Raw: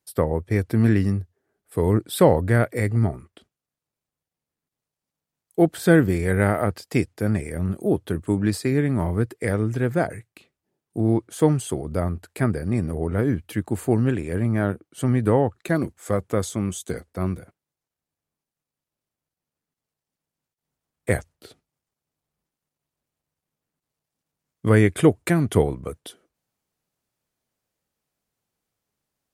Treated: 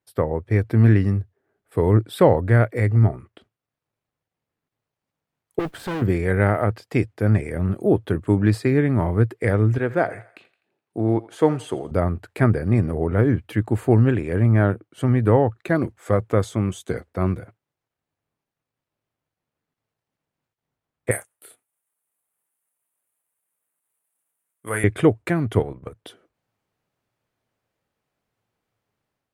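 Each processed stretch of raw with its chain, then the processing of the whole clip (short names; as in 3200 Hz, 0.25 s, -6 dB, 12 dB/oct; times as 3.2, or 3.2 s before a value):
5.59–6.02 tube stage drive 28 dB, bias 0.7 + modulation noise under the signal 24 dB
9.78–11.91 HPF 320 Hz 6 dB/oct + high shelf 12000 Hz -11.5 dB + thinning echo 84 ms, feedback 47%, high-pass 500 Hz, level -17 dB
21.11–24.84 HPF 1400 Hz 6 dB/oct + resonant high shelf 7100 Hz +13.5 dB, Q 3 + doubler 29 ms -8 dB
25.59–26 half-wave gain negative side -3 dB + level quantiser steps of 10 dB
whole clip: bell 110 Hz +8.5 dB 0.34 oct; AGC gain up to 5.5 dB; tone controls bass -4 dB, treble -12 dB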